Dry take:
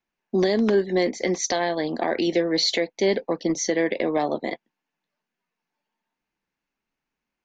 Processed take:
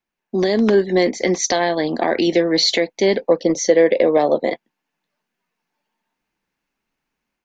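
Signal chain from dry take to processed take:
0:03.24–0:04.53: parametric band 520 Hz +9.5 dB 0.51 octaves
automatic gain control gain up to 6 dB

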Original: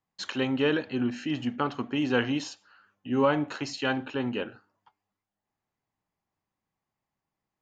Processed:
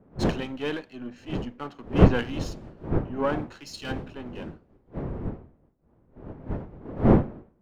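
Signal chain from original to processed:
gain on one half-wave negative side −7 dB
wind on the microphone 320 Hz −29 dBFS
multiband upward and downward expander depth 100%
level −3.5 dB

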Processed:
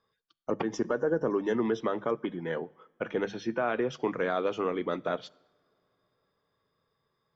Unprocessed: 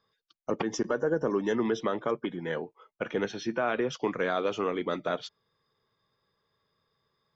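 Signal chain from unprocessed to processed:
high-shelf EQ 3,100 Hz −8 dB
mains-hum notches 50/100/150/200 Hz
on a send: convolution reverb, pre-delay 3 ms, DRR 23 dB

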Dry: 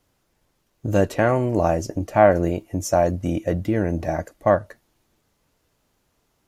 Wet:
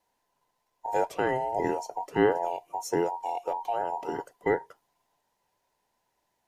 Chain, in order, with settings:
frequency inversion band by band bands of 1,000 Hz
level −8.5 dB

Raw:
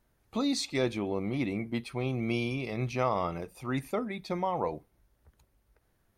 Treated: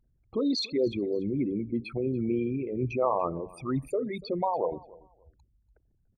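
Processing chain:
spectral envelope exaggerated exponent 3
repeating echo 289 ms, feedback 22%, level −22 dB
level +2.5 dB

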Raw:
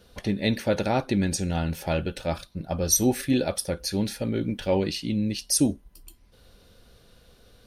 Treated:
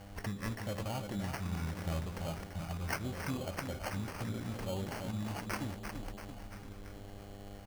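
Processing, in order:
running median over 5 samples
high-shelf EQ 8,500 Hz +11 dB
harmonic and percussive parts rebalanced percussive −6 dB
parametric band 340 Hz −12 dB 2.3 octaves
downward compressor 3 to 1, threshold −44 dBFS, peak gain reduction 16.5 dB
on a send: repeating echo 338 ms, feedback 58%, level −7 dB
on the sum: hum with harmonics 100 Hz, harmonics 8, −56 dBFS −3 dB per octave
auto-filter notch saw up 0.79 Hz 360–3,200 Hz
decimation without filtering 12×
level +5.5 dB

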